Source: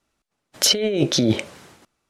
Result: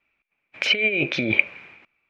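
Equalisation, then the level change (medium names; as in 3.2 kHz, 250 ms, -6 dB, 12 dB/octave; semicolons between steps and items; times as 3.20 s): resonant low-pass 2.4 kHz, resonance Q 15; bass shelf 320 Hz -4 dB; -5.0 dB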